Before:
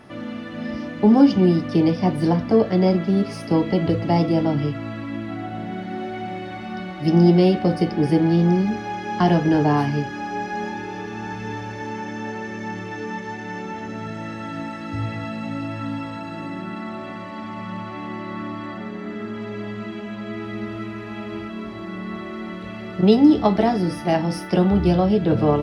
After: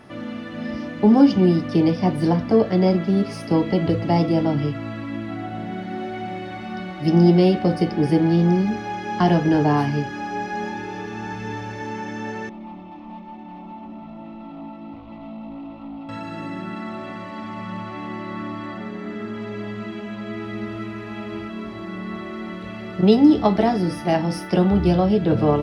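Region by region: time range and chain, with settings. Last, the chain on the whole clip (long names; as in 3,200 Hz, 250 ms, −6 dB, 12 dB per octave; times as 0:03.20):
0:12.49–0:16.09: hard clipping −30 dBFS + high-frequency loss of the air 490 metres + phaser with its sweep stopped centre 440 Hz, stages 6
whole clip: no processing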